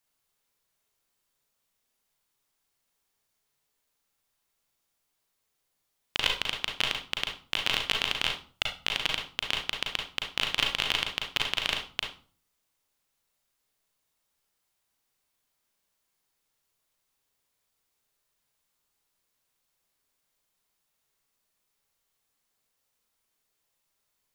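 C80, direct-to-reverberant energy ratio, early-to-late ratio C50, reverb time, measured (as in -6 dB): 12.0 dB, 1.0 dB, 5.0 dB, 0.40 s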